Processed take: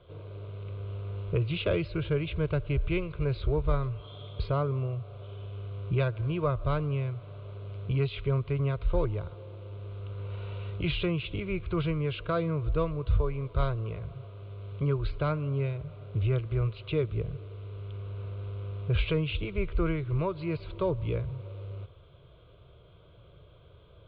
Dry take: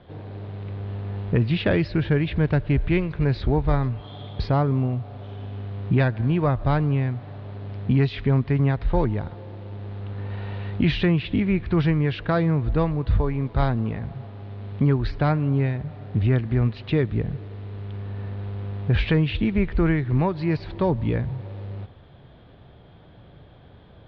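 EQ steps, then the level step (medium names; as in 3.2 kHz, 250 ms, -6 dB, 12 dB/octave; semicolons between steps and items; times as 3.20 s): static phaser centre 1.2 kHz, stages 8; -3.5 dB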